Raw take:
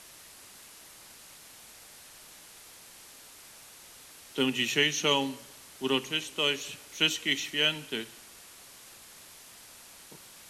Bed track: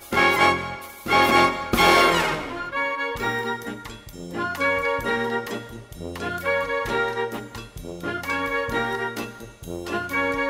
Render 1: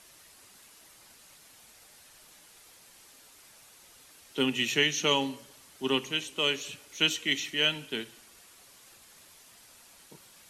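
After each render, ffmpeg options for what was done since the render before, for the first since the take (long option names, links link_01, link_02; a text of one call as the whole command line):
ffmpeg -i in.wav -af "afftdn=noise_reduction=6:noise_floor=-52" out.wav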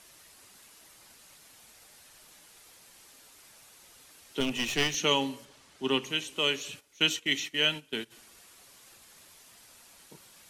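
ffmpeg -i in.wav -filter_complex "[0:a]asettb=1/sr,asplit=3[link_01][link_02][link_03];[link_01]atrim=end=4.404[link_04];[link_02]atrim=start=4.4:end=4.95,asetpts=PTS-STARTPTS,afade=type=in:duration=0.004:curve=qsin,afade=type=out:start_time=0.546:duration=0.004:curve=qsin,aeval=exprs='clip(val(0),-1,0.0211)':channel_layout=same[link_05];[link_03]atrim=start=4.946[link_06];[link_04][link_05]acrossfade=duration=0.004:curve1=hsin:curve2=qsin[link_07];[link_07][link_06]acrossfade=duration=0.004:curve1=qsin:curve2=hsin,asettb=1/sr,asplit=3[link_08][link_09][link_10];[link_08]atrim=end=5.454[link_11];[link_09]atrim=start=5.45:end=6.04,asetpts=PTS-STARTPTS,afade=type=in:duration=0.004:curve=qsin,afade=type=out:start_time=0.586:duration=0.004:curve=qsin,adynamicsmooth=sensitivity=6.5:basefreq=7900[link_12];[link_10]atrim=start=6.036[link_13];[link_11][link_12]acrossfade=duration=0.004:curve1=hsin:curve2=qsin[link_14];[link_14][link_13]acrossfade=duration=0.004:curve1=qsin:curve2=hsin,asplit=3[link_15][link_16][link_17];[link_15]afade=type=out:start_time=6.79:duration=0.02[link_18];[link_16]agate=range=-13dB:threshold=-40dB:ratio=16:release=100:detection=peak,afade=type=in:start_time=6.79:duration=0.02,afade=type=out:start_time=8.1:duration=0.02[link_19];[link_17]afade=type=in:start_time=8.1:duration=0.02[link_20];[link_18][link_19][link_20]amix=inputs=3:normalize=0" out.wav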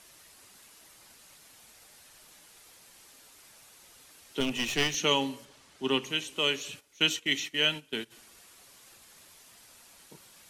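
ffmpeg -i in.wav -af anull out.wav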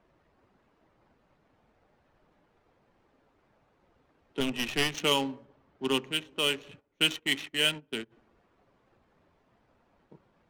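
ffmpeg -i in.wav -af "adynamicsmooth=sensitivity=5.5:basefreq=890" out.wav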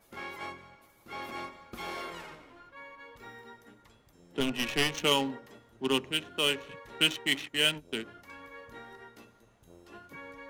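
ffmpeg -i in.wav -i bed.wav -filter_complex "[1:a]volume=-23dB[link_01];[0:a][link_01]amix=inputs=2:normalize=0" out.wav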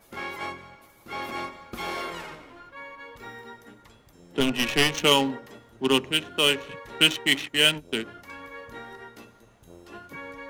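ffmpeg -i in.wav -af "volume=6.5dB" out.wav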